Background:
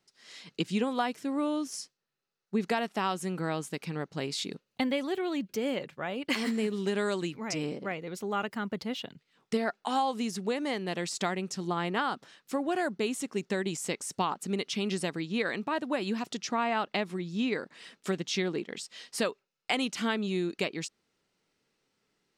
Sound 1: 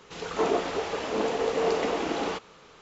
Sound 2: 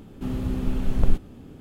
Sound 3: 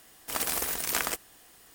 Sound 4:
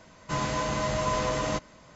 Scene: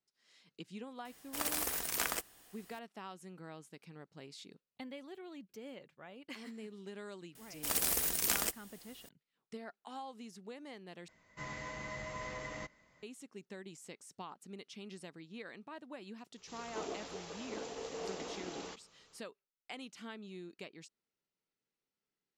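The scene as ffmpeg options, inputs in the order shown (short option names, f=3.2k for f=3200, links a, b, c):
-filter_complex "[3:a]asplit=2[a][b];[0:a]volume=-17.5dB[c];[b]equalizer=f=1.1k:w=0.48:g=-6.5[d];[4:a]equalizer=f=2k:t=o:w=0.21:g=14.5[e];[1:a]bass=f=250:g=4,treble=f=4k:g=13[f];[c]asplit=2[g][h];[g]atrim=end=11.084[i];[e]atrim=end=1.95,asetpts=PTS-STARTPTS,volume=-17dB[j];[h]atrim=start=13.026[k];[a]atrim=end=1.74,asetpts=PTS-STARTPTS,volume=-6dB,afade=t=in:d=0.004:c=hsin,afade=t=out:st=1.736:d=0.004:c=hsin,adelay=1050[l];[d]atrim=end=1.74,asetpts=PTS-STARTPTS,volume=-1.5dB,afade=t=in:d=0.004:c=hsin,afade=t=out:st=1.736:d=0.004:c=hsin,adelay=7350[m];[f]atrim=end=2.81,asetpts=PTS-STARTPTS,volume=-17.5dB,afade=t=in:d=0.004:c=hsin,afade=t=out:st=2.806:d=0.004:c=hsin,adelay=16370[n];[i][j]acrossfade=d=0.004:c1=hsin:c2=hsin[o];[o][k]acrossfade=d=0.004:c1=hsin:c2=hsin[p];[p][l][m][n]amix=inputs=4:normalize=0"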